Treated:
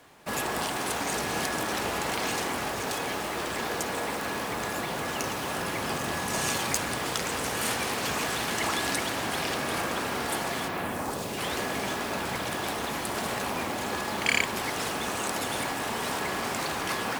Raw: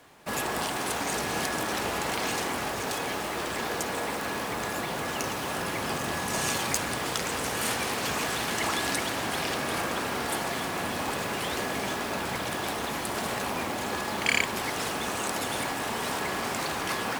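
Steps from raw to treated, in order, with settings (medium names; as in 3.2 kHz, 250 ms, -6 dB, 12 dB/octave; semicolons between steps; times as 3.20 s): 10.67–11.37 s: peaking EQ 10 kHz -> 1.2 kHz -10 dB 1.3 oct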